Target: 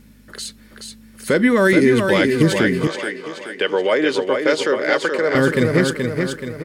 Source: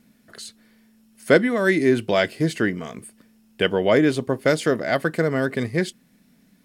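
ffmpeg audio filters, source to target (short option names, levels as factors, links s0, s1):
-filter_complex "[0:a]alimiter=limit=0.237:level=0:latency=1:release=72,asuperstop=centerf=690:order=4:qfactor=5.6,aecho=1:1:427|854|1281|1708|2135|2562:0.562|0.27|0.13|0.0622|0.0299|0.0143,aeval=exprs='val(0)+0.00141*(sin(2*PI*50*n/s)+sin(2*PI*2*50*n/s)/2+sin(2*PI*3*50*n/s)/3+sin(2*PI*4*50*n/s)/4+sin(2*PI*5*50*n/s)/5)':c=same,asettb=1/sr,asplit=3[s0][s1][s2];[s0]atrim=end=2.874[s3];[s1]atrim=start=2.87:end=5.35,asetpts=PTS-STARTPTS,afade=t=in:d=0.004:c=qsin,afade=t=out:st=2.476:d=0.004:c=qsin,acrossover=split=330 7200:gain=0.0708 1 0.141[s4][s5][s6];[s4][s5][s6]amix=inputs=3:normalize=0[s7];[s2]atrim=start=5.346[s8];[s3][s7]acrossfade=d=0.004:c1=hsin:c2=qsin[s9];[s9][s8]acrossfade=d=0.004:c1=qsin:c2=hsin,volume=2.37"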